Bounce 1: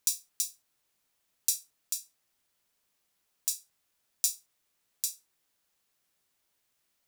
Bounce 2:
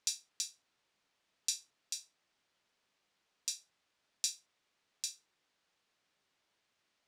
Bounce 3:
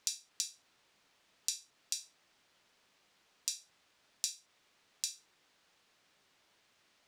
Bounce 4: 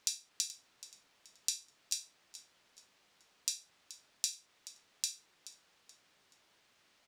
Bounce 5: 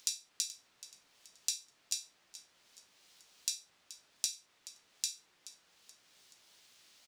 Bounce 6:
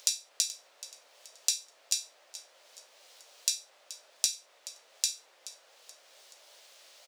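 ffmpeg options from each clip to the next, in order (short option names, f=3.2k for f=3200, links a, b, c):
-af "lowpass=4.6k,lowshelf=f=96:g=-10,volume=2.5dB"
-af "acompressor=threshold=-43dB:ratio=4,volume=9dB"
-filter_complex "[0:a]asplit=4[a][b][c][d];[b]adelay=428,afreqshift=-53,volume=-16dB[e];[c]adelay=856,afreqshift=-106,volume=-25.1dB[f];[d]adelay=1284,afreqshift=-159,volume=-34.2dB[g];[a][e][f][g]amix=inputs=4:normalize=0,volume=1dB"
-filter_complex "[0:a]acrossover=split=3300[a][b];[b]acompressor=mode=upward:threshold=-54dB:ratio=2.5[c];[a][c]amix=inputs=2:normalize=0,asplit=2[d][e];[e]adelay=17,volume=-13dB[f];[d][f]amix=inputs=2:normalize=0"
-af "highpass=f=560:t=q:w=3.6,volume=6.5dB"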